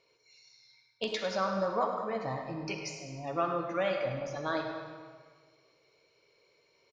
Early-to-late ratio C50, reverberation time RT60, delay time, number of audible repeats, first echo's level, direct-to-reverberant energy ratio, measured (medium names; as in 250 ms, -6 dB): 3.5 dB, 1.7 s, 103 ms, 1, -10.5 dB, 3.0 dB